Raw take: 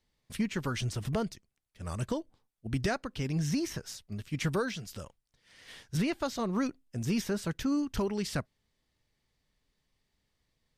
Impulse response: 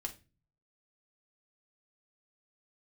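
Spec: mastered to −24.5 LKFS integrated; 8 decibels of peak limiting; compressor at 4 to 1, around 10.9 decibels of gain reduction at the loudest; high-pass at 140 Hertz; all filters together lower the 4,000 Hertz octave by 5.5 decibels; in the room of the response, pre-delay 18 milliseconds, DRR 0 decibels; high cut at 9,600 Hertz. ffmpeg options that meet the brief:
-filter_complex "[0:a]highpass=140,lowpass=9600,equalizer=frequency=4000:width_type=o:gain=-7.5,acompressor=threshold=-40dB:ratio=4,alimiter=level_in=12dB:limit=-24dB:level=0:latency=1,volume=-12dB,asplit=2[link_01][link_02];[1:a]atrim=start_sample=2205,adelay=18[link_03];[link_02][link_03]afir=irnorm=-1:irlink=0,volume=1dB[link_04];[link_01][link_04]amix=inputs=2:normalize=0,volume=18.5dB"

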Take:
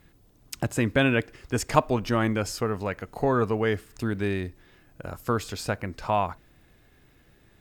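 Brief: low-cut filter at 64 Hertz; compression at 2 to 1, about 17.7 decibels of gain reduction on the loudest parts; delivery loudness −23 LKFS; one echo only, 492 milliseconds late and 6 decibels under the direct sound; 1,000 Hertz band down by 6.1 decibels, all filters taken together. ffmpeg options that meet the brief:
ffmpeg -i in.wav -af "highpass=64,equalizer=frequency=1000:width_type=o:gain=-8,acompressor=threshold=-52dB:ratio=2,aecho=1:1:492:0.501,volume=21dB" out.wav

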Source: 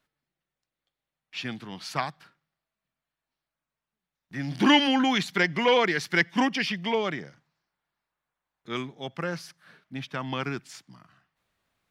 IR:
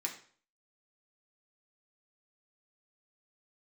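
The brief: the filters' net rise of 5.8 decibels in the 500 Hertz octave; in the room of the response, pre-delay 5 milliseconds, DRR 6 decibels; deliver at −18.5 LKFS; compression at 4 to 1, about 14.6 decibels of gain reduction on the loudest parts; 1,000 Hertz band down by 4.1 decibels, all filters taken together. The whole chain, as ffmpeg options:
-filter_complex "[0:a]equalizer=frequency=500:width_type=o:gain=8,equalizer=frequency=1000:width_type=o:gain=-8,acompressor=threshold=-31dB:ratio=4,asplit=2[link_01][link_02];[1:a]atrim=start_sample=2205,adelay=5[link_03];[link_02][link_03]afir=irnorm=-1:irlink=0,volume=-7.5dB[link_04];[link_01][link_04]amix=inputs=2:normalize=0,volume=16dB"

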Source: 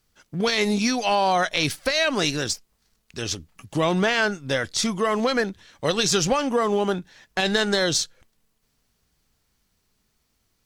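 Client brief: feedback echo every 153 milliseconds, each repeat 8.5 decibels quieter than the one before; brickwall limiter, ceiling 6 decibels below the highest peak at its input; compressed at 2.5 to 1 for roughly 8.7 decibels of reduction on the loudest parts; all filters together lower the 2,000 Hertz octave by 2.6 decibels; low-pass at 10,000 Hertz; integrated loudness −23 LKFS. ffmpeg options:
ffmpeg -i in.wav -af "lowpass=10000,equalizer=frequency=2000:width_type=o:gain=-3.5,acompressor=threshold=-31dB:ratio=2.5,alimiter=limit=-22dB:level=0:latency=1,aecho=1:1:153|306|459|612:0.376|0.143|0.0543|0.0206,volume=9.5dB" out.wav

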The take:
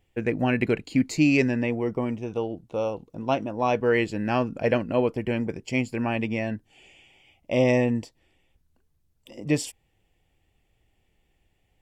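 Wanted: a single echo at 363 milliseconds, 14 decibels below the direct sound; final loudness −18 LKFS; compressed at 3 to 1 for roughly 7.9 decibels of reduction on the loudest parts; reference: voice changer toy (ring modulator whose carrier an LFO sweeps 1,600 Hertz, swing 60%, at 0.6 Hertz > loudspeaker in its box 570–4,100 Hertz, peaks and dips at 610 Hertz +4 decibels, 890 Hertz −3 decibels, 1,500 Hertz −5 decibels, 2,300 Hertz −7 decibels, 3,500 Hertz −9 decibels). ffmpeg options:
ffmpeg -i in.wav -af "acompressor=threshold=-27dB:ratio=3,aecho=1:1:363:0.2,aeval=exprs='val(0)*sin(2*PI*1600*n/s+1600*0.6/0.6*sin(2*PI*0.6*n/s))':channel_layout=same,highpass=570,equalizer=frequency=610:width_type=q:width=4:gain=4,equalizer=frequency=890:width_type=q:width=4:gain=-3,equalizer=frequency=1500:width_type=q:width=4:gain=-5,equalizer=frequency=2300:width_type=q:width=4:gain=-7,equalizer=frequency=3500:width_type=q:width=4:gain=-9,lowpass=frequency=4100:width=0.5412,lowpass=frequency=4100:width=1.3066,volume=18.5dB" out.wav

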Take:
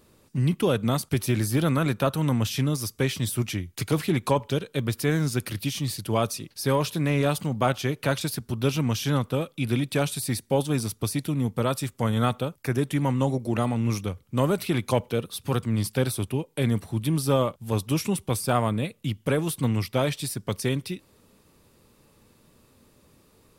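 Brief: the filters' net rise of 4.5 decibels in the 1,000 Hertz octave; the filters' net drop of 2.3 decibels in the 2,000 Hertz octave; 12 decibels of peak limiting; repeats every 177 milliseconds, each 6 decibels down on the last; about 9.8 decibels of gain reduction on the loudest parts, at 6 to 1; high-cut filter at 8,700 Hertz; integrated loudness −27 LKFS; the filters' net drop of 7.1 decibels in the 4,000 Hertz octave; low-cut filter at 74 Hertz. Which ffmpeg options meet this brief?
ffmpeg -i in.wav -af "highpass=74,lowpass=8700,equalizer=frequency=1000:width_type=o:gain=7,equalizer=frequency=2000:width_type=o:gain=-3.5,equalizer=frequency=4000:width_type=o:gain=-8.5,acompressor=threshold=-26dB:ratio=6,alimiter=level_in=1dB:limit=-24dB:level=0:latency=1,volume=-1dB,aecho=1:1:177|354|531|708|885|1062:0.501|0.251|0.125|0.0626|0.0313|0.0157,volume=7.5dB" out.wav

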